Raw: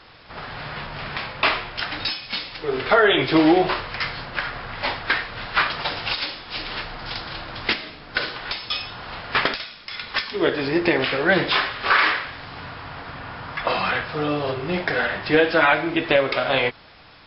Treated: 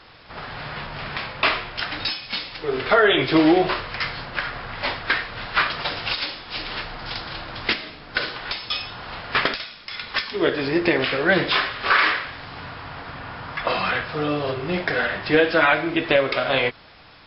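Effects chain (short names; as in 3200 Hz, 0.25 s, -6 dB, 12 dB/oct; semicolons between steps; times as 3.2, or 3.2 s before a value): dynamic EQ 850 Hz, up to -4 dB, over -39 dBFS, Q 5.7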